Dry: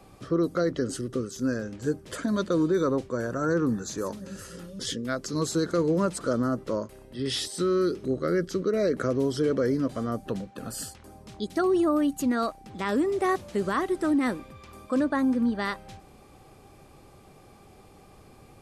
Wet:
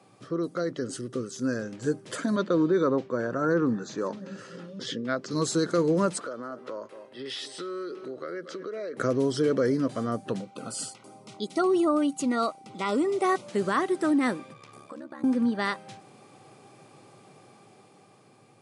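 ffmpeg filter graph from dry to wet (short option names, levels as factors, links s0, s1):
-filter_complex "[0:a]asettb=1/sr,asplit=3[s0][s1][s2];[s0]atrim=end=2.364[s3];[s1]atrim=start=2.36:end=5.31,asetpts=PTS-STARTPTS,afade=t=in:d=0.004:c=qsin,afade=t=out:st=2.946:d=0.004:c=qsin,highpass=120,lowpass=5500,aemphasis=mode=reproduction:type=cd[s4];[s2]atrim=start=5.306[s5];[s3][s4]acrossfade=d=0.004:c1=hsin:c2=qsin[s6];[s6][s5]acrossfade=d=0.004:c1=qsin:c2=hsin,asettb=1/sr,asplit=3[s7][s8][s9];[s7]atrim=end=6.204[s10];[s8]atrim=start=6.2:end=8.97,asetpts=PTS-STARTPTS,afade=t=in:d=0.004:c=qsin,afade=t=out:st=2.766:d=0.004:c=qsin,acrossover=split=340 4100:gain=0.158 1 0.251[s11][s12][s13];[s11][s12][s13]amix=inputs=3:normalize=0,aecho=1:1:230:0.133,atrim=end_sample=122157,acompressor=threshold=0.02:ratio=4:attack=3.2:release=140:knee=1:detection=peak[s14];[s9]atrim=start=8.966[s15];[s10][s14]acrossfade=d=0.004:c1=hsin:c2=qsin[s16];[s16][s15]acrossfade=d=0.004:c1=qsin:c2=hsin,asettb=1/sr,asplit=3[s17][s18][s19];[s17]atrim=end=10.404[s20];[s18]atrim=start=10.4:end=13.47,asetpts=PTS-STARTPTS,afade=t=in:d=0.004:c=qsin,afade=t=out:st=3.066:d=0.004:c=qsin,asuperstop=centerf=1700:order=20:qfactor=5.5,lowshelf=f=130:g=-7.5[s21];[s19]atrim=start=13.466[s22];[s20][s21]acrossfade=d=0.004:c1=hsin:c2=qsin[s23];[s23][s22]acrossfade=d=0.004:c1=qsin:c2=hsin,asettb=1/sr,asplit=3[s24][s25][s26];[s24]atrim=end=14.534[s27];[s25]atrim=start=14.53:end=15.24,asetpts=PTS-STARTPTS,afade=t=in:d=0.004:c=qsin,afade=t=out:st=0.706:d=0.004:c=qsin,bandreject=f=240:w=7.1,acompressor=threshold=0.0126:ratio=5:attack=3.2:release=140:knee=1:detection=peak,aeval=exprs='val(0)*sin(2*PI*35*n/s)':c=same[s28];[s26]atrim=start=15.236[s29];[s27][s28]acrossfade=d=0.004:c1=hsin:c2=qsin[s30];[s30][s29]acrossfade=d=0.004:c1=qsin:c2=hsin,afftfilt=real='re*between(b*sr/4096,100,11000)':imag='im*between(b*sr/4096,100,11000)':win_size=4096:overlap=0.75,lowshelf=f=330:g=-3,dynaudnorm=f=290:g=9:m=1.88,volume=0.668"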